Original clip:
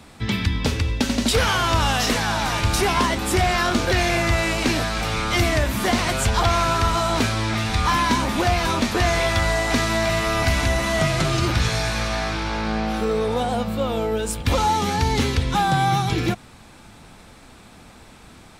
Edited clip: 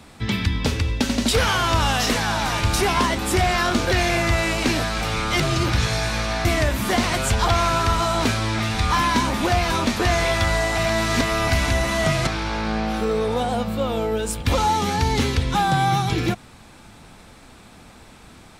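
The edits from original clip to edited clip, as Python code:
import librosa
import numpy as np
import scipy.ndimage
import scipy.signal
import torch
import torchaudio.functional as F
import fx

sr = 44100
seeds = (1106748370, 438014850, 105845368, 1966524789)

y = fx.edit(x, sr, fx.reverse_span(start_s=9.73, length_s=0.44),
    fx.move(start_s=11.22, length_s=1.05, to_s=5.4), tone=tone)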